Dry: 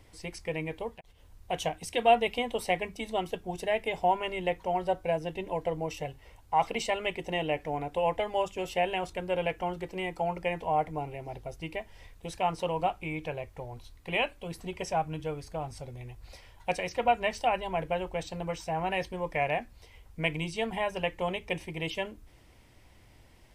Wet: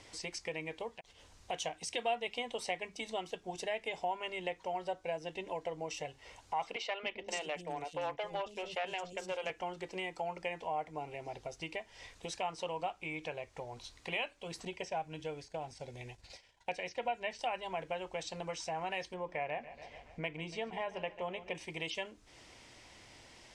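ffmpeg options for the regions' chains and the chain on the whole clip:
-filter_complex "[0:a]asettb=1/sr,asplit=3[a][b][c];[a]atrim=end=6.764[d];[b]atrim=start=6.76:end=9.5,asetpts=PTS-STARTPTS,afade=t=in:d=0.004:c=qsin,afade=t=out:st=2.736:d=0.004:c=qsin,agate=range=-33dB:threshold=-39dB:ratio=3:release=100:detection=peak,aeval=exprs='clip(val(0),-1,0.0531)':c=same,acrossover=split=330|4800[e][f][g];[e]adelay=270[h];[g]adelay=520[i];[h][f][i]amix=inputs=3:normalize=0,atrim=end_sample=120834[j];[c]atrim=start=9.496[k];[d][j]acrossfade=d=0.004:c1=hsin:c2=qsin[l];[l][k]acrossfade=d=0.004:c1=qsin:c2=hsin,asettb=1/sr,asplit=3[m][n][o];[m]atrim=end=14.654[p];[n]atrim=start=14.65:end=17.39,asetpts=PTS-STARTPTS,afade=t=in:d=0.004:c=qsin,afade=t=out:st=2.736:d=0.004:c=qsin,acrossover=split=3600[q][r];[r]acompressor=threshold=-53dB:ratio=4:attack=1:release=60[s];[q][s]amix=inputs=2:normalize=0,agate=range=-33dB:threshold=-43dB:ratio=3:release=100:detection=peak,equalizer=f=1.2k:w=7.4:g=-13.5[t];[o]atrim=start=17.386[u];[p][t]acrossfade=d=0.004:c1=hsin:c2=qsin[v];[v][u]acrossfade=d=0.004:c1=qsin:c2=hsin,asettb=1/sr,asplit=3[w][x][y];[w]atrim=end=19.144[z];[x]atrim=start=19.14:end=21.55,asetpts=PTS-STARTPTS,afade=t=in:d=0.004:c=qsin,afade=t=out:st=2.406:d=0.004:c=qsin,lowpass=f=1.6k:p=1,aecho=1:1:142|284|426|568|710:0.15|0.0778|0.0405|0.021|0.0109,atrim=end_sample=106281[aa];[y]atrim=start=21.546[ab];[z][aa]acrossfade=d=0.004:c1=hsin:c2=qsin[ac];[ac][ab]acrossfade=d=0.004:c1=qsin:c2=hsin,lowpass=f=6.9k:w=0.5412,lowpass=f=6.9k:w=1.3066,aemphasis=mode=production:type=bsi,acompressor=threshold=-49dB:ratio=2,volume=4.5dB"

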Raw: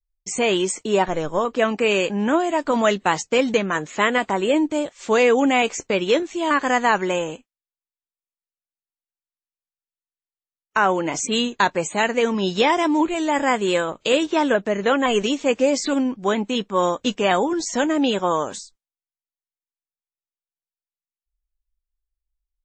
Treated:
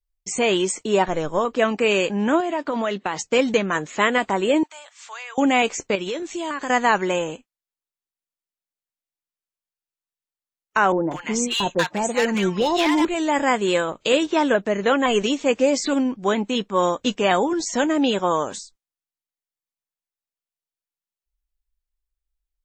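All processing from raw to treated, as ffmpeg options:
-filter_complex "[0:a]asettb=1/sr,asplit=3[a][b][c];[a]atrim=end=2.404[d];[b]atrim=start=2.4:end=3.19,asetpts=PTS-STARTPTS,afade=t=in:d=0.004:c=qsin,afade=t=out:st=0.786:d=0.004:c=qsin,highpass=160,lowpass=4.9k,acompressor=threshold=-20dB:ratio=4:attack=3.2:release=140:knee=1:detection=peak[e];[c]atrim=start=3.186[f];[d][e]acrossfade=d=0.004:c1=hsin:c2=qsin[g];[g][f]acrossfade=d=0.004:c1=qsin:c2=hsin,asettb=1/sr,asplit=3[h][i][j];[h]atrim=end=4.634[k];[i]atrim=start=4.63:end=5.38,asetpts=PTS-STARTPTS,afade=t=in:d=0.004:c=qsin,afade=t=out:st=0.746:d=0.004:c=qsin,highpass=f=910:w=0.5412,highpass=f=910:w=1.3066,acompressor=threshold=-42dB:ratio=2:attack=3.2:release=140:knee=1:detection=peak[l];[j]atrim=start=5.376[m];[k][l]acrossfade=d=0.004:c1=hsin:c2=qsin[n];[n][m]acrossfade=d=0.004:c1=qsin:c2=hsin,asettb=1/sr,asplit=3[o][p][q];[o]atrim=end=5.954[r];[p]atrim=start=5.95:end=6.7,asetpts=PTS-STARTPTS,afade=t=in:d=0.004:c=qsin,afade=t=out:st=0.746:d=0.004:c=qsin,highshelf=f=6k:g=8,acompressor=threshold=-24dB:ratio=6:attack=3.2:release=140:knee=1:detection=peak[s];[q]atrim=start=6.696[t];[r][s]acrossfade=d=0.004:c1=hsin:c2=qsin[u];[u][t]acrossfade=d=0.004:c1=qsin:c2=hsin,asettb=1/sr,asplit=3[v][w][x];[v]atrim=end=10.924[y];[w]atrim=start=10.92:end=13.05,asetpts=PTS-STARTPTS,afade=t=in:d=0.004:c=qsin,afade=t=out:st=2.126:d=0.004:c=qsin,aecho=1:1:5.7:0.34,atrim=end_sample=93933,asoftclip=type=hard:threshold=-13.5dB,acrossover=split=1000[z][aa];[aa]adelay=190[ab];[z][ab]amix=inputs=2:normalize=0,atrim=end_sample=93933[ac];[x]atrim=start=13.046[ad];[y][ac]acrossfade=d=0.004:c1=hsin:c2=qsin[ae];[ae][ad]acrossfade=d=0.004:c1=qsin:c2=hsin"

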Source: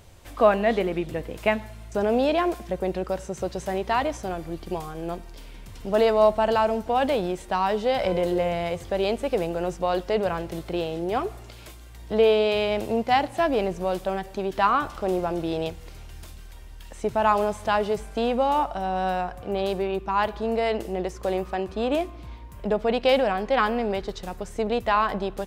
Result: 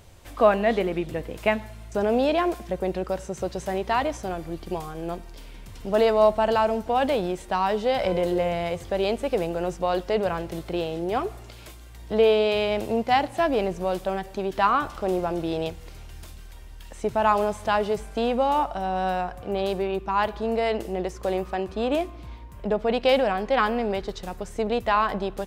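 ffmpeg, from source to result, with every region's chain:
-filter_complex "[0:a]asettb=1/sr,asplit=3[a][b][c];[a]atrim=end=22.444[d];[b]atrim=start=22.44:end=22.9,asetpts=PTS-STARTPTS,afade=t=in:d=0.004:c=qsin,afade=t=out:st=0.456:d=0.004:c=qsin,lowpass=f=2.5k:p=1,aemphasis=mode=production:type=cd[e];[c]atrim=start=22.896[f];[d][e]acrossfade=d=0.004:c1=hsin:c2=qsin[g];[g][f]acrossfade=d=0.004:c1=qsin:c2=hsin"

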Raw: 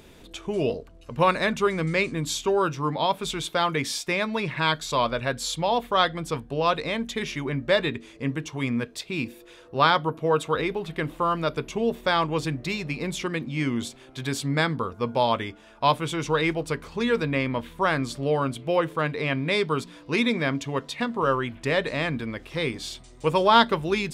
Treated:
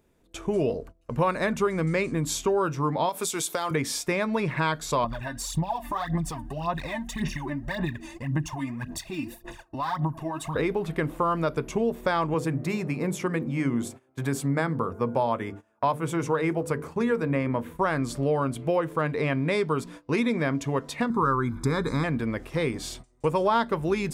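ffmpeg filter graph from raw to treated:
-filter_complex "[0:a]asettb=1/sr,asplit=3[a][b][c];[a]atrim=end=3.094[d];[b]atrim=start=3.09:end=3.71,asetpts=PTS-STARTPTS,afade=t=in:d=0.004:c=qsin,afade=t=out:st=0.616:d=0.004:c=qsin,highpass=150,bass=f=250:g=-7,treble=f=4k:g=13,acompressor=threshold=-26dB:ratio=5:attack=3.2:release=140:knee=1:detection=peak[e];[c]atrim=start=3.706[f];[d][e]acrossfade=d=0.004:c1=hsin:c2=qsin[g];[g][f]acrossfade=d=0.004:c1=qsin:c2=hsin,asettb=1/sr,asplit=3[h][i][j];[h]atrim=end=5.044[k];[i]atrim=start=5.04:end=10.56,asetpts=PTS-STARTPTS,afade=t=in:d=0.004:c=qsin,afade=t=out:st=5.516:d=0.004:c=qsin,aecho=1:1:1.1:0.89,atrim=end_sample=243432,acompressor=threshold=-35dB:ratio=4:attack=3.2:release=140:knee=1:detection=peak,aphaser=in_gain=1:out_gain=1:delay=3.4:decay=0.71:speed=1.8:type=sinusoidal[l];[j]atrim=start=10.556[m];[k][l]acrossfade=d=0.004:c1=hsin:c2=qsin[n];[n][m]acrossfade=d=0.004:c1=qsin:c2=hsin,asettb=1/sr,asplit=3[o][p][q];[o]atrim=end=12.344[r];[p]atrim=start=12.34:end=17.75,asetpts=PTS-STARTPTS,afade=t=in:d=0.004:c=qsin,afade=t=out:st=5.406:d=0.004:c=qsin,highpass=f=82:w=0.5412,highpass=f=82:w=1.3066,equalizer=f=4.1k:t=o:w=1.5:g=-6.5,bandreject=f=50:t=h:w=6,bandreject=f=100:t=h:w=6,bandreject=f=150:t=h:w=6,bandreject=f=200:t=h:w=6,bandreject=f=250:t=h:w=6,bandreject=f=300:t=h:w=6,bandreject=f=350:t=h:w=6,bandreject=f=400:t=h:w=6,bandreject=f=450:t=h:w=6,bandreject=f=500:t=h:w=6[s];[q]atrim=start=17.746[t];[r][s]acrossfade=d=0.004:c1=hsin:c2=qsin[u];[u][t]acrossfade=d=0.004:c1=qsin:c2=hsin,asettb=1/sr,asplit=3[v][w][x];[v]atrim=end=21.104[y];[w]atrim=start=21.1:end=22.04,asetpts=PTS-STARTPTS,afade=t=in:d=0.004:c=qsin,afade=t=out:st=0.936:d=0.004:c=qsin,asuperstop=centerf=2700:order=4:qfactor=2.3,aecho=1:1:0.8:0.99,atrim=end_sample=41454[z];[x]atrim=start=22.036[aa];[y][z]acrossfade=d=0.004:c1=hsin:c2=qsin[ab];[ab][aa]acrossfade=d=0.004:c1=qsin:c2=hsin,agate=range=-20dB:threshold=-43dB:ratio=16:detection=peak,equalizer=f=3.5k:w=1:g=-9.5,acompressor=threshold=-27dB:ratio=3,volume=4.5dB"

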